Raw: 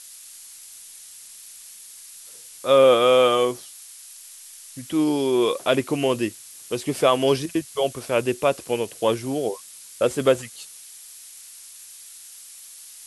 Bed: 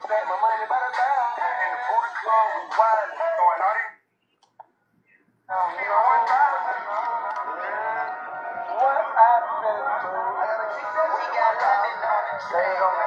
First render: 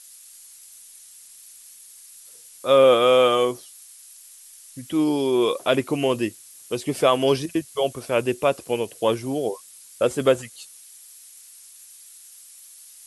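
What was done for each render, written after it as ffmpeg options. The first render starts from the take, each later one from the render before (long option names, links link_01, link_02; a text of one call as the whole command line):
ffmpeg -i in.wav -af "afftdn=noise_reduction=6:noise_floor=-44" out.wav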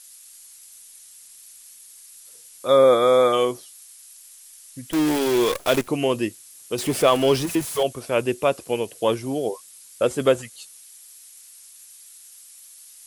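ffmpeg -i in.wav -filter_complex "[0:a]asplit=3[link_01][link_02][link_03];[link_01]afade=type=out:start_time=2.67:duration=0.02[link_04];[link_02]asuperstop=centerf=2800:order=20:qfactor=2.8,afade=type=in:start_time=2.67:duration=0.02,afade=type=out:start_time=3.32:duration=0.02[link_05];[link_03]afade=type=in:start_time=3.32:duration=0.02[link_06];[link_04][link_05][link_06]amix=inputs=3:normalize=0,asettb=1/sr,asplit=3[link_07][link_08][link_09];[link_07]atrim=end=4.914[link_10];[link_08]atrim=start=4.91:end=5.88,asetpts=PTS-STARTPTS,afade=type=in:duration=0.004:curve=qsin,afade=type=out:start_time=0.966:duration=0.004:curve=qsin,acrusher=bits=5:dc=4:mix=0:aa=0.000001[link_11];[link_09]atrim=start=5.876[link_12];[link_10][link_11]acrossfade=duration=0.004:curve1=hsin:curve2=qsin[link_13];[link_13][link_12]acrossfade=duration=0.004:curve1=qsin:curve2=hsin,asettb=1/sr,asplit=3[link_14][link_15][link_16];[link_14]atrim=end=6.784[link_17];[link_15]atrim=start=6.78:end=7.83,asetpts=PTS-STARTPTS,afade=type=in:duration=0.004:curve=qsin,afade=type=out:start_time=1.046:duration=0.004:curve=qsin,aeval=exprs='val(0)+0.5*0.0422*sgn(val(0))':channel_layout=same[link_18];[link_16]atrim=start=7.826[link_19];[link_17][link_18]acrossfade=duration=0.004:curve1=hsin:curve2=qsin[link_20];[link_20][link_19]acrossfade=duration=0.004:curve1=qsin:curve2=hsin" out.wav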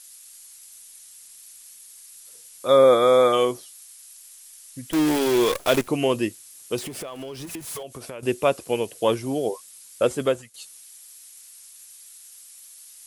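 ffmpeg -i in.wav -filter_complex "[0:a]asettb=1/sr,asplit=3[link_01][link_02][link_03];[link_01]atrim=end=6.784[link_04];[link_02]atrim=start=6.78:end=8.23,asetpts=PTS-STARTPTS,afade=type=in:duration=0.004:curve=qsin,afade=type=out:start_time=1.446:duration=0.004:curve=qsin,acompressor=threshold=-32dB:ratio=10:attack=3.2:release=140:knee=1:detection=peak[link_05];[link_03]atrim=start=8.226[link_06];[link_04][link_05]acrossfade=duration=0.004:curve1=hsin:curve2=qsin[link_07];[link_07][link_06]acrossfade=duration=0.004:curve1=qsin:curve2=hsin,asplit=2[link_08][link_09];[link_08]atrim=end=10.54,asetpts=PTS-STARTPTS,afade=type=out:start_time=10.06:duration=0.48:silence=0.199526[link_10];[link_09]atrim=start=10.54,asetpts=PTS-STARTPTS,afade=type=in:duration=0.004:curve=hsin:silence=0.199526[link_11];[link_10][link_11]concat=n=2:v=0:a=1" out.wav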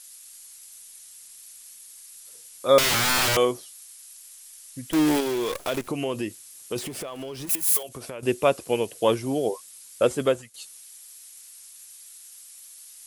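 ffmpeg -i in.wav -filter_complex "[0:a]asettb=1/sr,asplit=3[link_01][link_02][link_03];[link_01]atrim=end=2.784[link_04];[link_02]atrim=start=2.78:end=3.37,asetpts=PTS-STARTPTS,afade=type=in:duration=0.004:curve=qsin,afade=type=out:start_time=0.586:duration=0.004:curve=qsin,aeval=exprs='(mod(7.5*val(0)+1,2)-1)/7.5':channel_layout=same[link_05];[link_03]atrim=start=3.366[link_06];[link_04][link_05]acrossfade=duration=0.004:curve1=hsin:curve2=qsin[link_07];[link_07][link_06]acrossfade=duration=0.004:curve1=qsin:curve2=hsin,asettb=1/sr,asplit=3[link_08][link_09][link_10];[link_08]atrim=end=5.204[link_11];[link_09]atrim=start=5.2:end=6.76,asetpts=PTS-STARTPTS,afade=type=in:duration=0.004:curve=qsin,afade=type=out:start_time=1.556:duration=0.004:curve=qsin,acompressor=threshold=-26dB:ratio=2.5:attack=3.2:release=140:knee=1:detection=peak[link_12];[link_10]atrim=start=6.756[link_13];[link_11][link_12]acrossfade=duration=0.004:curve1=hsin:curve2=qsin[link_14];[link_14][link_13]acrossfade=duration=0.004:curve1=qsin:curve2=hsin,asettb=1/sr,asplit=3[link_15][link_16][link_17];[link_15]atrim=end=7.494[link_18];[link_16]atrim=start=7.49:end=7.89,asetpts=PTS-STARTPTS,afade=type=in:duration=0.004:curve=qsin,afade=type=out:start_time=0.396:duration=0.004:curve=qsin,aemphasis=mode=production:type=bsi[link_19];[link_17]atrim=start=7.886[link_20];[link_18][link_19]acrossfade=duration=0.004:curve1=hsin:curve2=qsin[link_21];[link_21][link_20]acrossfade=duration=0.004:curve1=qsin:curve2=hsin" out.wav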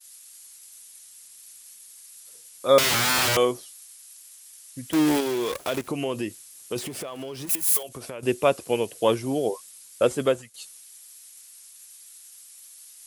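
ffmpeg -i in.wav -af "highpass=58,agate=range=-33dB:threshold=-44dB:ratio=3:detection=peak" out.wav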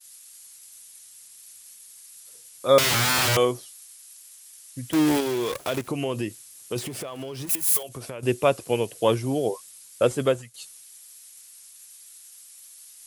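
ffmpeg -i in.wav -af "equalizer=frequency=120:width=2.9:gain=6.5" out.wav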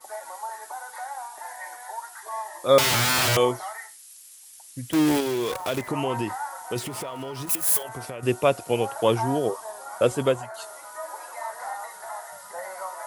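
ffmpeg -i in.wav -i bed.wav -filter_complex "[1:a]volume=-14dB[link_01];[0:a][link_01]amix=inputs=2:normalize=0" out.wav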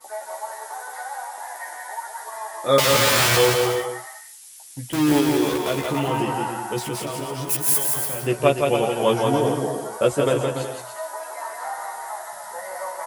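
ffmpeg -i in.wav -filter_complex "[0:a]asplit=2[link_01][link_02];[link_02]adelay=14,volume=-3dB[link_03];[link_01][link_03]amix=inputs=2:normalize=0,aecho=1:1:170|289|372.3|430.6|471.4:0.631|0.398|0.251|0.158|0.1" out.wav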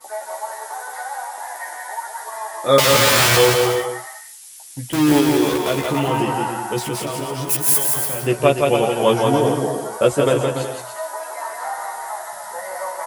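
ffmpeg -i in.wav -af "volume=3.5dB,alimiter=limit=-1dB:level=0:latency=1" out.wav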